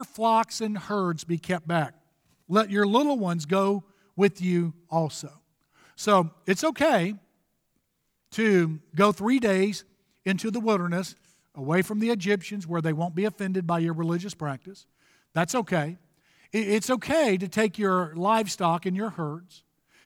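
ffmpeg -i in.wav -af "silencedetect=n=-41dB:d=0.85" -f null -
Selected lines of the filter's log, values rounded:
silence_start: 7.17
silence_end: 8.32 | silence_duration: 1.15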